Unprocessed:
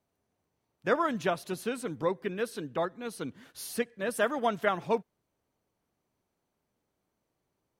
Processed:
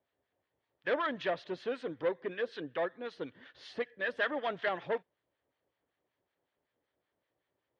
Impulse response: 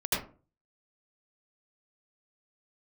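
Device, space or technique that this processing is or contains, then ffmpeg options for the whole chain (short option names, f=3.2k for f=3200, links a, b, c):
guitar amplifier with harmonic tremolo: -filter_complex "[0:a]acrossover=split=1000[a][b];[a]aeval=exprs='val(0)*(1-0.7/2+0.7/2*cos(2*PI*5.3*n/s))':c=same[c];[b]aeval=exprs='val(0)*(1-0.7/2-0.7/2*cos(2*PI*5.3*n/s))':c=same[d];[c][d]amix=inputs=2:normalize=0,asoftclip=type=tanh:threshold=-28dB,highpass=80,equalizer=f=91:t=q:w=4:g=-4,equalizer=f=150:t=q:w=4:g=-6,equalizer=f=210:t=q:w=4:g=-10,equalizer=f=540:t=q:w=4:g=5,equalizer=f=1.8k:t=q:w=4:g=9,equalizer=f=3.3k:t=q:w=4:g=6,lowpass=f=4.1k:w=0.5412,lowpass=f=4.1k:w=1.3066"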